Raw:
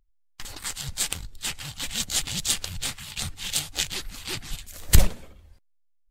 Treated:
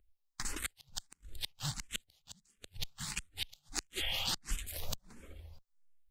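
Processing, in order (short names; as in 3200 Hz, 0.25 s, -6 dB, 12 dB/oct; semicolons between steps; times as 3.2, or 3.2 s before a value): 3.98–4.28 spectral repair 510–3500 Hz before; compressor 8:1, threshold -29 dBFS, peak gain reduction 21.5 dB; 2.33–2.79 small resonant body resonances 200/420 Hz, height 11 dB -> 7 dB; flipped gate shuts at -20 dBFS, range -38 dB; endless phaser +1.5 Hz; gain +2.5 dB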